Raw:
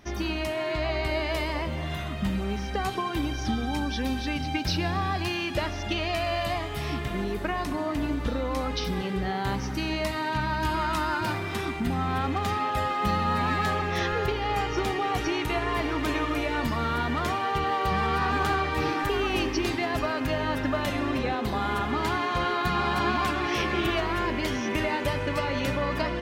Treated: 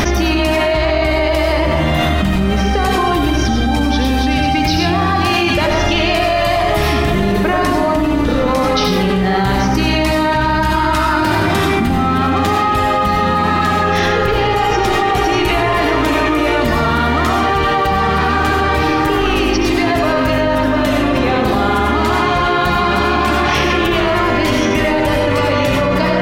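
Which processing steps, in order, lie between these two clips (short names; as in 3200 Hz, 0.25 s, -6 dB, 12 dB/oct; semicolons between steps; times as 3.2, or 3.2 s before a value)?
reverb RT60 0.90 s, pre-delay 50 ms, DRR 0.5 dB; fast leveller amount 100%; gain +5.5 dB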